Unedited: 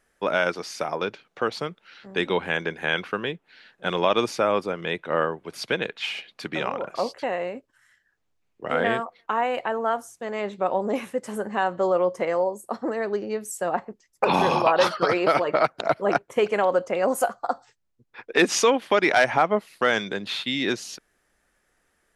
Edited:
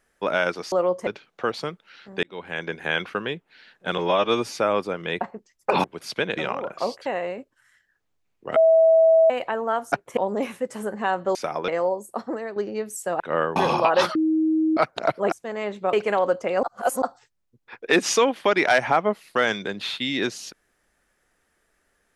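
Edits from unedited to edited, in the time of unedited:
0:00.72–0:01.05: swap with 0:11.88–0:12.23
0:02.21–0:02.78: fade in
0:03.96–0:04.34: time-stretch 1.5×
0:05.00–0:05.36: swap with 0:13.75–0:14.38
0:05.89–0:06.54: remove
0:08.73–0:09.47: beep over 650 Hz −12 dBFS
0:10.09–0:10.70: swap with 0:16.14–0:16.39
0:12.77–0:13.11: fade out, to −8.5 dB
0:14.97–0:15.59: beep over 316 Hz −17.5 dBFS
0:17.09–0:17.48: reverse

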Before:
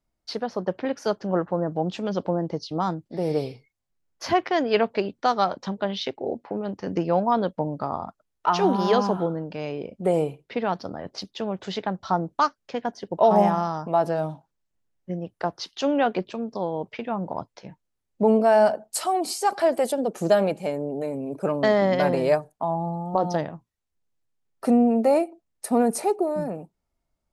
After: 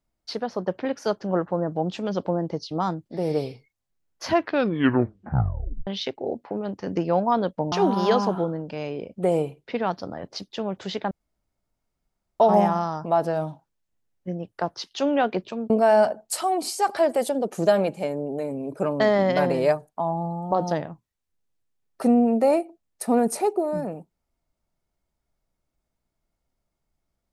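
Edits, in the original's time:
0:04.26: tape stop 1.61 s
0:07.72–0:08.54: remove
0:11.93–0:13.22: fill with room tone
0:16.52–0:18.33: remove

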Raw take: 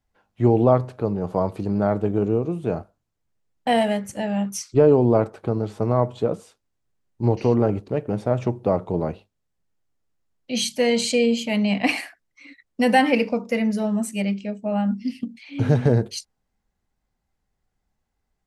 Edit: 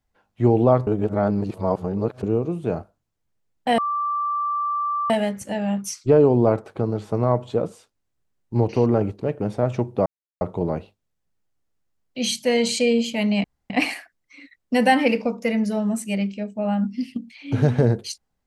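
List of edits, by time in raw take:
0:00.87–0:02.23: reverse
0:03.78: insert tone 1,170 Hz −21 dBFS 1.32 s
0:08.74: splice in silence 0.35 s
0:11.77: splice in room tone 0.26 s

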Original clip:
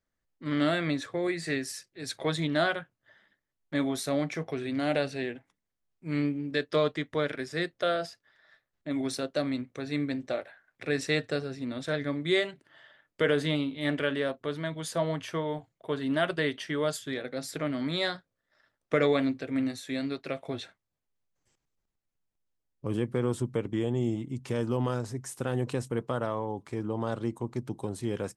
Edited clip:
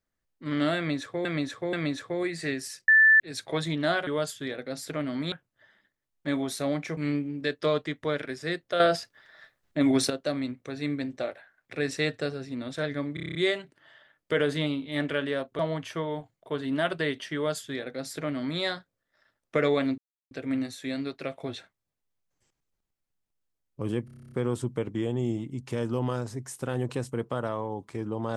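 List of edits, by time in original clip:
0:00.77–0:01.25: repeat, 3 plays
0:01.92: insert tone 1,760 Hz −14 dBFS 0.32 s
0:04.44–0:06.07: remove
0:07.90–0:09.20: clip gain +8.5 dB
0:12.24: stutter 0.03 s, 8 plays
0:14.48–0:14.97: remove
0:16.73–0:17.98: duplicate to 0:02.79
0:19.36: splice in silence 0.33 s
0:23.10: stutter 0.03 s, 10 plays

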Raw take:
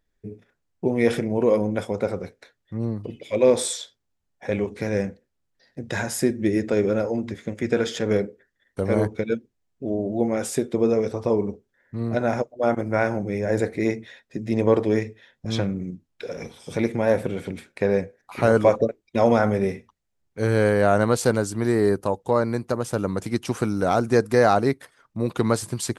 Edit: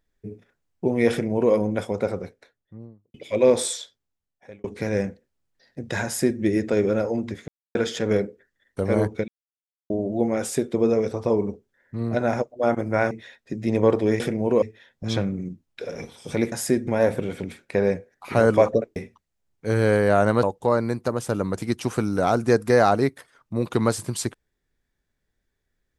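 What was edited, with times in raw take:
0:01.11–0:01.53: duplicate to 0:15.04
0:02.04–0:03.14: fade out and dull
0:03.66–0:04.64: fade out
0:06.05–0:06.40: duplicate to 0:16.94
0:07.48–0:07.75: silence
0:09.28–0:09.90: silence
0:13.11–0:13.95: remove
0:19.03–0:19.69: remove
0:21.16–0:22.07: remove

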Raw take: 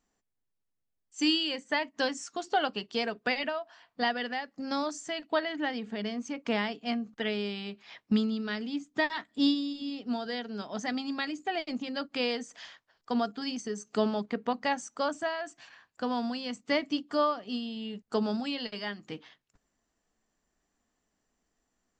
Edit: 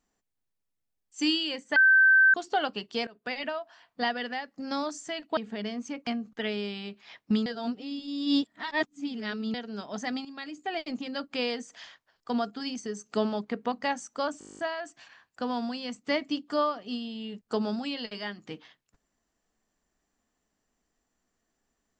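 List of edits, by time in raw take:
0:01.76–0:02.34: beep over 1,550 Hz −15.5 dBFS
0:03.07–0:03.51: fade in, from −22.5 dB
0:05.37–0:05.77: remove
0:06.47–0:06.88: remove
0:08.27–0:10.35: reverse
0:11.06–0:11.59: fade in, from −13 dB
0:15.20: stutter 0.02 s, 11 plays

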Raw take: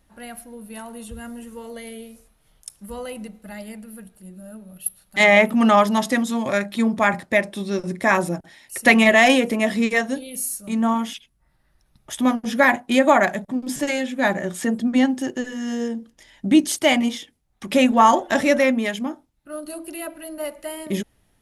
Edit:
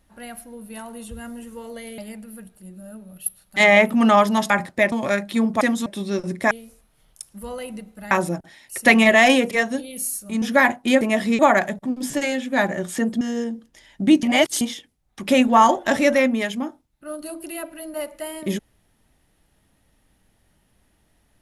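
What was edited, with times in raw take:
0:01.98–0:03.58: move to 0:08.11
0:06.10–0:06.35: swap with 0:07.04–0:07.46
0:09.51–0:09.89: move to 0:13.05
0:10.80–0:12.46: remove
0:14.87–0:15.65: remove
0:16.67–0:17.05: reverse

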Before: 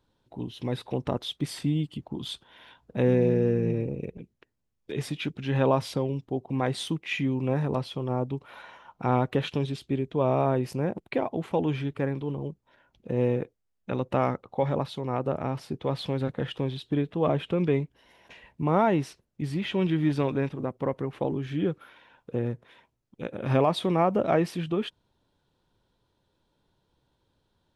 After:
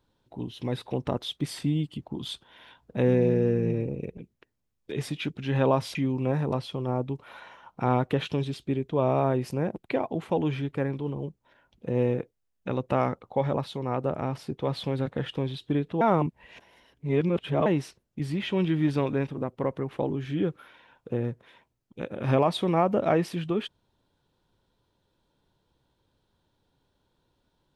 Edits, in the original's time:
0:05.95–0:07.17: remove
0:17.23–0:18.88: reverse

